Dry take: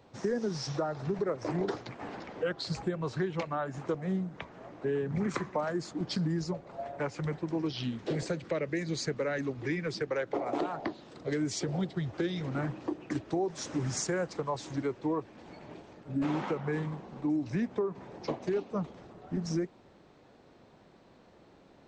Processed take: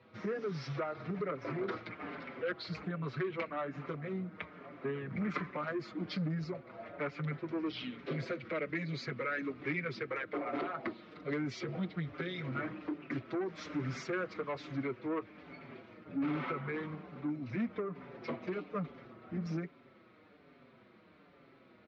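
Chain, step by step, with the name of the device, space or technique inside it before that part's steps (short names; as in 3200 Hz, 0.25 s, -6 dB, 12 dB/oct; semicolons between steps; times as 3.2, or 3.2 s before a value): barber-pole flanger into a guitar amplifier (endless flanger 5.7 ms -1.2 Hz; soft clip -30 dBFS, distortion -15 dB; speaker cabinet 94–4200 Hz, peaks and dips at 250 Hz +3 dB, 830 Hz -7 dB, 1300 Hz +8 dB, 2200 Hz +9 dB)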